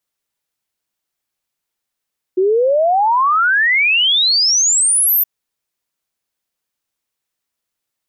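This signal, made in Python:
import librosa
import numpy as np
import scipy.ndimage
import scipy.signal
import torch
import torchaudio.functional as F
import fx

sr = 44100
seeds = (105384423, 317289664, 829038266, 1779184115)

y = fx.ess(sr, length_s=2.87, from_hz=360.0, to_hz=14000.0, level_db=-10.5)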